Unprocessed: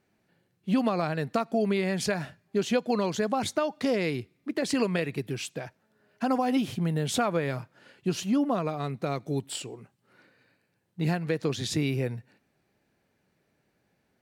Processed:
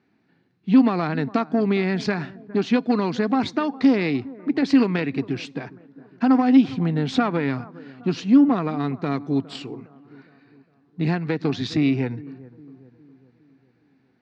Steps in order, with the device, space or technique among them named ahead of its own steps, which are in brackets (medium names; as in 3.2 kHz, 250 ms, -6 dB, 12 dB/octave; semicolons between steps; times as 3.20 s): analogue delay pedal into a guitar amplifier (bucket-brigade echo 409 ms, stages 4096, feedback 48%, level -20 dB; valve stage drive 19 dB, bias 0.5; cabinet simulation 100–4600 Hz, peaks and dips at 270 Hz +9 dB, 570 Hz -9 dB, 3.1 kHz -5 dB); trim +7 dB